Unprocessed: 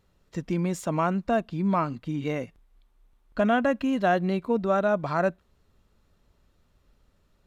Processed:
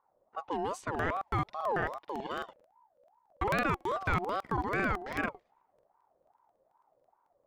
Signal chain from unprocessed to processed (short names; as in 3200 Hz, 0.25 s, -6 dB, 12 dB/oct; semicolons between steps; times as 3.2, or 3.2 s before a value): low-pass opened by the level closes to 620 Hz, open at -23 dBFS; crackling interface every 0.11 s, samples 2048, repeat, from 0.9; ring modulator with a swept carrier 750 Hz, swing 30%, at 2.5 Hz; gain -4.5 dB